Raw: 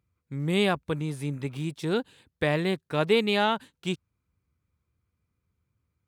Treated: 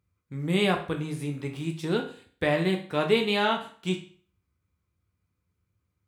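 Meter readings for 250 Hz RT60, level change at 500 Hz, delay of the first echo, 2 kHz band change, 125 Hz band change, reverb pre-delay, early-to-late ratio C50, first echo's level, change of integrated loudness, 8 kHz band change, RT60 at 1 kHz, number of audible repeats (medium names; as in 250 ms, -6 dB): 0.45 s, 0.0 dB, no echo, +0.5 dB, -0.5 dB, 9 ms, 10.0 dB, no echo, 0.0 dB, 0.0 dB, 0.45 s, no echo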